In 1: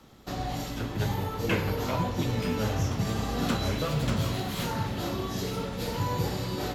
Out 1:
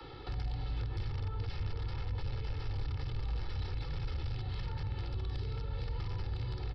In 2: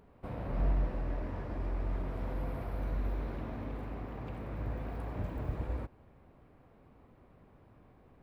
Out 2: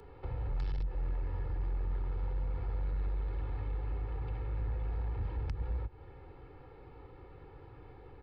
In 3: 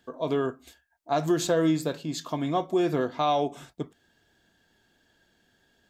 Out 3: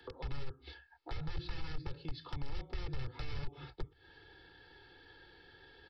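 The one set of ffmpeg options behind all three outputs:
-filter_complex "[0:a]bandreject=f=600:w=12,aresample=11025,aeval=exprs='(mod(15*val(0)+1,2)-1)/15':c=same,aresample=44100,acrossover=split=120|410[a][b][c];[a]acompressor=threshold=-41dB:ratio=4[d];[b]acompressor=threshold=-49dB:ratio=4[e];[c]acompressor=threshold=-43dB:ratio=4[f];[d][e][f]amix=inputs=3:normalize=0,aecho=1:1:2.3:0.91,acrossover=split=140[g][h];[h]acompressor=threshold=-51dB:ratio=10[i];[g][i]amix=inputs=2:normalize=0,asoftclip=type=tanh:threshold=-33dB,volume=5.5dB"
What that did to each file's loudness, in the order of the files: -9.0, 0.0, -18.5 LU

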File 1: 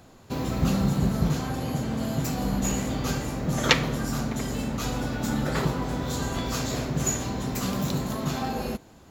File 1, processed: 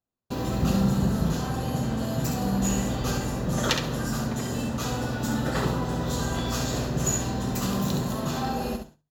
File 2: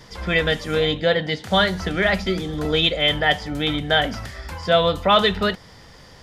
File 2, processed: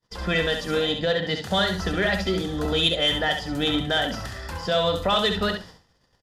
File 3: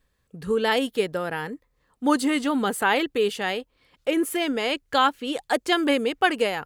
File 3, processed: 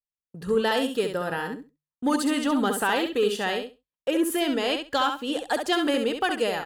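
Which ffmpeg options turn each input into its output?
-filter_complex "[0:a]bandreject=f=2.2k:w=6.6,agate=range=-40dB:threshold=-42dB:ratio=16:detection=peak,bandreject=f=50:t=h:w=6,bandreject=f=100:t=h:w=6,bandreject=f=150:t=h:w=6,acrossover=split=3600[a][b];[a]alimiter=limit=-13.5dB:level=0:latency=1:release=256[c];[c][b]amix=inputs=2:normalize=0,asoftclip=type=tanh:threshold=-12dB,aecho=1:1:67|134|201:0.473|0.0757|0.0121"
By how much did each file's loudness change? 0.0, -3.5, -1.5 LU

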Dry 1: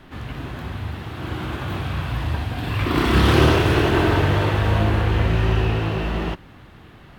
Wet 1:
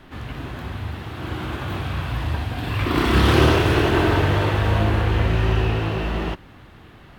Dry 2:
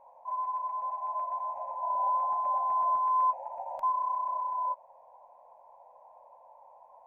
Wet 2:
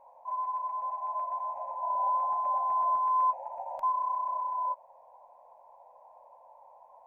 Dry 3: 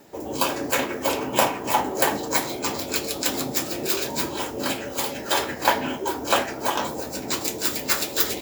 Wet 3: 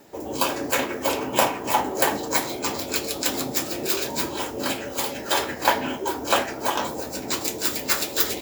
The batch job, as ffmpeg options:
-af "equalizer=f=160:t=o:w=0.77:g=-2"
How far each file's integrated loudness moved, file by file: -0.5, 0.0, 0.0 LU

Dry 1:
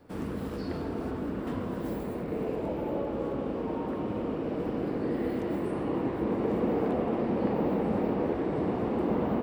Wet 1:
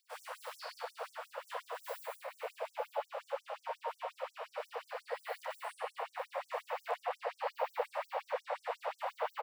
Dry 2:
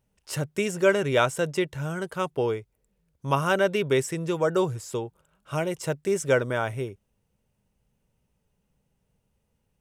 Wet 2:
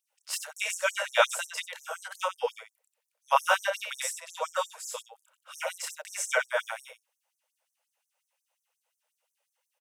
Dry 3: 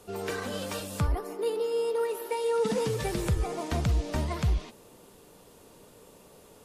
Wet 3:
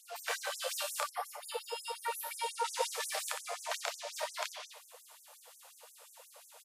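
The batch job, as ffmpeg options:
-af "aecho=1:1:29.15|90.38:0.891|0.447,afftfilt=real='re*gte(b*sr/1024,460*pow(5800/460,0.5+0.5*sin(2*PI*5.6*pts/sr)))':imag='im*gte(b*sr/1024,460*pow(5800/460,0.5+0.5*sin(2*PI*5.6*pts/sr)))':win_size=1024:overlap=0.75"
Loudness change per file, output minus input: -10.5, -4.0, -7.5 LU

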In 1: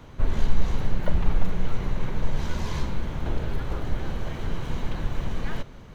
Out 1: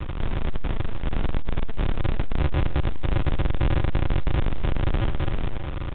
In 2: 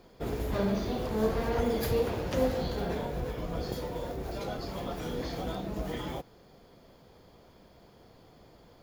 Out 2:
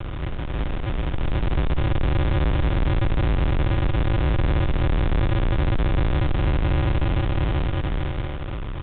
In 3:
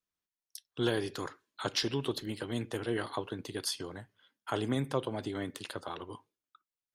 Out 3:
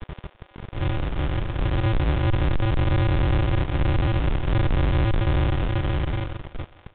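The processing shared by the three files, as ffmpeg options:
-filter_complex "[0:a]aeval=exprs='val(0)+0.5*0.0531*sgn(val(0))':c=same,lowshelf=f=140:g=-4,dynaudnorm=f=280:g=11:m=15.5dB,aresample=8000,acrusher=samples=36:mix=1:aa=0.000001,aresample=44100,asoftclip=type=tanh:threshold=-20.5dB,acrossover=split=430[a][b];[a]acrusher=bits=5:mix=0:aa=0.000001[c];[c][b]amix=inputs=2:normalize=0,aecho=1:1:163|326|489|652:0.0794|0.0461|0.0267|0.0155,volume=2dB" -ar 8000 -c:a pcm_mulaw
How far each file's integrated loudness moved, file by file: +3.5, +8.5, +11.5 LU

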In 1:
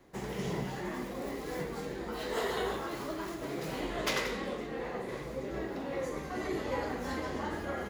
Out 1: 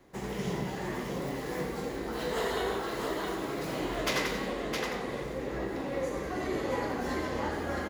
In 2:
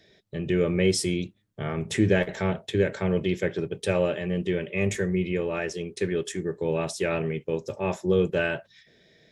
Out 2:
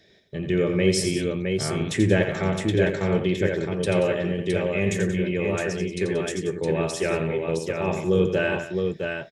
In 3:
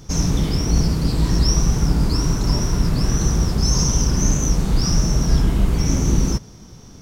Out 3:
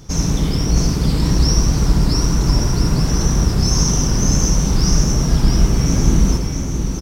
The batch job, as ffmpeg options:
-af "aecho=1:1:86|181|664:0.422|0.224|0.596,volume=1dB"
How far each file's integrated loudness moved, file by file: +3.0, +2.5, +2.5 LU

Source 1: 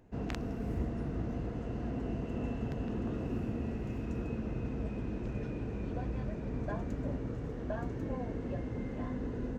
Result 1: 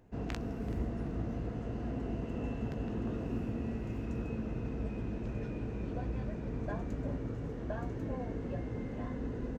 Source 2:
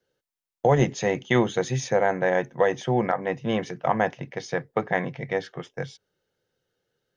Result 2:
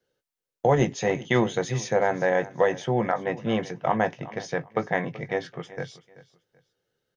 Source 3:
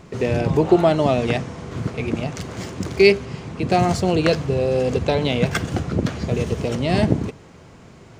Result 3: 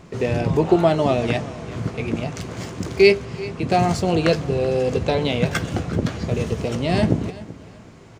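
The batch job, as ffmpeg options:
-filter_complex "[0:a]asplit=2[a][b];[b]adelay=18,volume=-12dB[c];[a][c]amix=inputs=2:normalize=0,asplit=2[d][e];[e]aecho=0:1:382|764:0.126|0.034[f];[d][f]amix=inputs=2:normalize=0,volume=-1dB"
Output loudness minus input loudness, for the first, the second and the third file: -0.5, -1.0, -1.0 LU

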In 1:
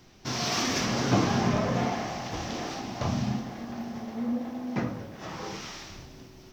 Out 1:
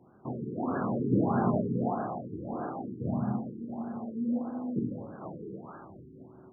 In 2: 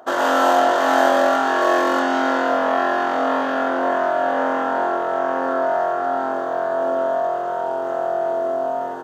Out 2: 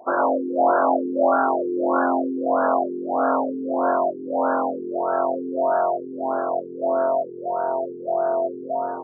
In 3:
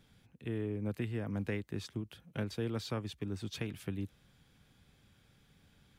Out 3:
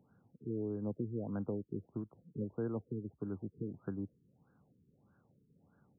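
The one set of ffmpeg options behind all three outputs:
-af "highpass=130,lowpass=5.1k,afftfilt=real='re*lt(b*sr/1024,450*pow(1700/450,0.5+0.5*sin(2*PI*1.6*pts/sr)))':imag='im*lt(b*sr/1024,450*pow(1700/450,0.5+0.5*sin(2*PI*1.6*pts/sr)))':win_size=1024:overlap=0.75"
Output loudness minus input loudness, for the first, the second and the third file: -2.5, -3.0, -2.0 LU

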